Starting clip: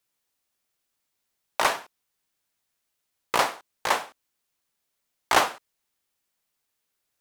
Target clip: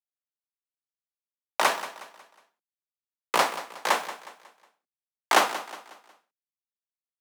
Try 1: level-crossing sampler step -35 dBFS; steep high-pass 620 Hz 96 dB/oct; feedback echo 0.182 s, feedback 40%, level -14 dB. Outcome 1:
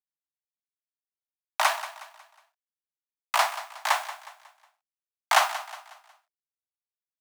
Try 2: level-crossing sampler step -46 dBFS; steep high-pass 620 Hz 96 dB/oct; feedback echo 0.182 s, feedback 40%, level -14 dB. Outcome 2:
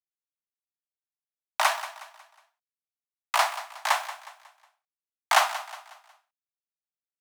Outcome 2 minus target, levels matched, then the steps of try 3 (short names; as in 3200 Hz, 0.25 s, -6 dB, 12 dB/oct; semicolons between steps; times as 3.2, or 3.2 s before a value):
500 Hz band -4.5 dB
level-crossing sampler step -46 dBFS; steep high-pass 160 Hz 96 dB/oct; feedback echo 0.182 s, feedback 40%, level -14 dB